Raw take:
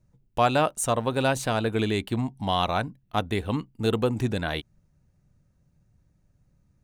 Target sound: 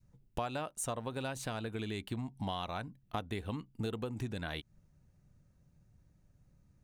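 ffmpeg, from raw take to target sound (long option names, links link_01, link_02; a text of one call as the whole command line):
ffmpeg -i in.wav -af "acompressor=threshold=-33dB:ratio=6,adynamicequalizer=threshold=0.00501:dfrequency=550:dqfactor=0.73:tfrequency=550:tqfactor=0.73:attack=5:release=100:ratio=0.375:range=2:mode=cutabove:tftype=bell,volume=-1.5dB" out.wav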